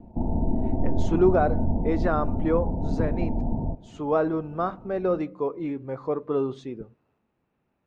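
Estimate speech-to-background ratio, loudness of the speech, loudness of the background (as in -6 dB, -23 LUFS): 1.5 dB, -27.0 LUFS, -28.5 LUFS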